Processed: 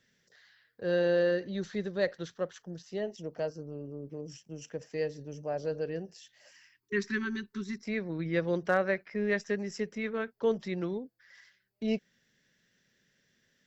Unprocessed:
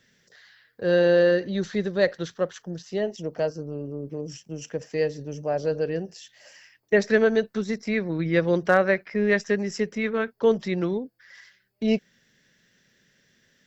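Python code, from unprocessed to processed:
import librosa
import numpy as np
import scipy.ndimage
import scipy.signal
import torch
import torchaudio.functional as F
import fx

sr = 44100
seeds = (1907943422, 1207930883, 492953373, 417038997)

y = fx.spec_erase(x, sr, start_s=6.51, length_s=1.32, low_hz=430.0, high_hz=890.0)
y = y * 10.0 ** (-8.0 / 20.0)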